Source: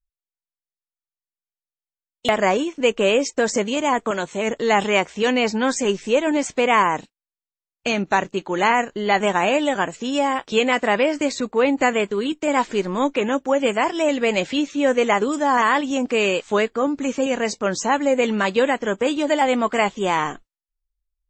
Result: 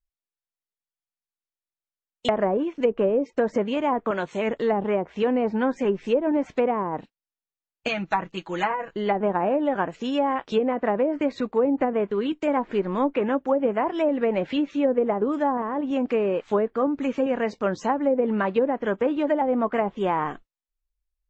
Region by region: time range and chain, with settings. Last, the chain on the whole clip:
7.88–8.93 bell 340 Hz -8.5 dB 3 oct + comb 6.1 ms, depth 85%
whole clip: treble ducked by the level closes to 580 Hz, closed at -13.5 dBFS; high shelf 4500 Hz -5.5 dB; gain -2 dB

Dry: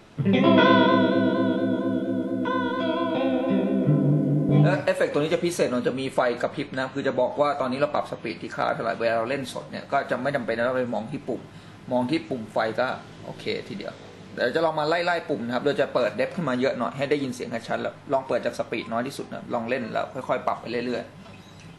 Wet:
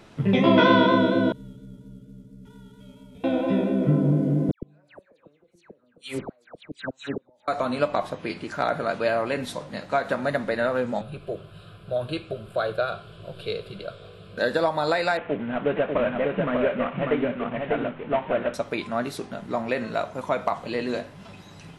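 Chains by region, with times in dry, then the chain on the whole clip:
1.32–3.24 CVSD 64 kbps + passive tone stack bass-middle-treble 10-0-1 + frequency shift -68 Hz
4.51–7.48 flipped gate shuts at -16 dBFS, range -39 dB + dispersion lows, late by 0.116 s, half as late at 1800 Hz + mismatched tape noise reduction decoder only
11.01–14.38 low shelf 200 Hz +5 dB + fixed phaser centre 1300 Hz, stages 8
15.17–18.54 CVSD 16 kbps + echo 0.595 s -3.5 dB
whole clip: dry

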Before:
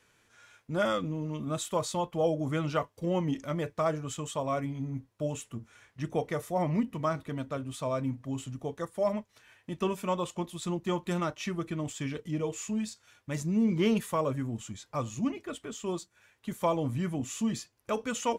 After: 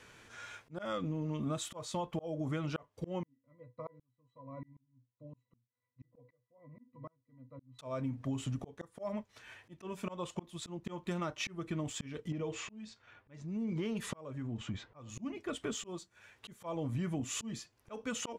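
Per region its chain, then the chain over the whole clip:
3.23–7.79 HPF 100 Hz + octave resonator B, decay 0.13 s + dB-ramp tremolo swelling 1.3 Hz, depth 36 dB
12.32–15.09 low-pass opened by the level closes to 1700 Hz, open at -23 dBFS + compressor 2.5:1, threshold -40 dBFS
whole clip: high shelf 9300 Hz -11 dB; auto swell 0.789 s; compressor 10:1, threshold -42 dBFS; gain +9.5 dB

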